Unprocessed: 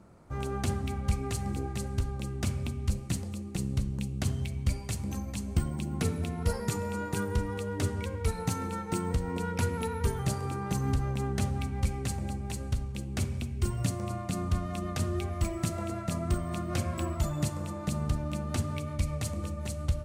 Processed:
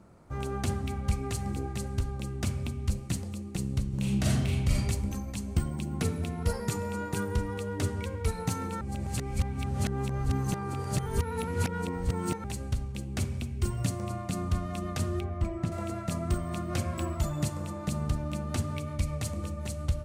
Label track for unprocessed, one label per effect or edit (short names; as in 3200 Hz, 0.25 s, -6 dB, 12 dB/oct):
3.880000	4.790000	reverb throw, RT60 1.1 s, DRR -5.5 dB
8.810000	12.440000	reverse
15.200000	15.720000	LPF 1300 Hz 6 dB/oct